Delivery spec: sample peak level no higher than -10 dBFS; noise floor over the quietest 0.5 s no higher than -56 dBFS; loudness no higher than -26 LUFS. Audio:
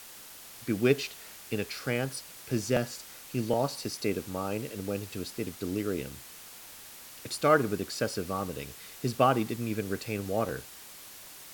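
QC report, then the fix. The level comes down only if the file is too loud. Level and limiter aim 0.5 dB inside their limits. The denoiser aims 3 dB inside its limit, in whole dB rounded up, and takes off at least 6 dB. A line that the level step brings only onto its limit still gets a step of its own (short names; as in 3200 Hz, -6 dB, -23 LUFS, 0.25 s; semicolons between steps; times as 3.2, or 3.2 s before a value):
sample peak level -8.5 dBFS: fail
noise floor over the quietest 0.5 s -48 dBFS: fail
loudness -31.5 LUFS: OK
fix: denoiser 11 dB, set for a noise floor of -48 dBFS; limiter -10.5 dBFS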